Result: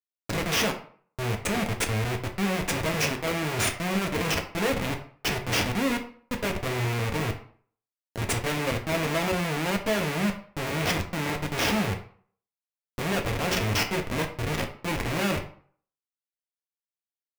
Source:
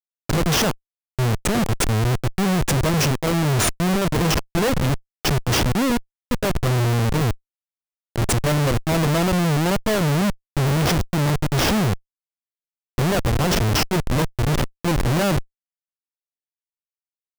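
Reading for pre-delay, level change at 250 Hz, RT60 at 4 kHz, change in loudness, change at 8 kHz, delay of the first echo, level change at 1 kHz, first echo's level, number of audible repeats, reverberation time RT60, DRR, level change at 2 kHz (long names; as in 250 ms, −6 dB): 4 ms, −8.0 dB, 0.35 s, −7.0 dB, −6.5 dB, no echo audible, −5.5 dB, no echo audible, no echo audible, 0.50 s, 2.5 dB, −2.0 dB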